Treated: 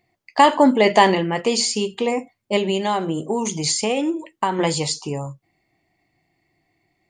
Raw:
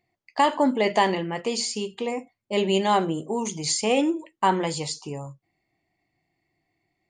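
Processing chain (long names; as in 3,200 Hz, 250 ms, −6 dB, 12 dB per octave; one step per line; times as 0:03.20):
0:02.56–0:04.59: downward compressor 6 to 1, threshold −25 dBFS, peak gain reduction 9.5 dB
level +7 dB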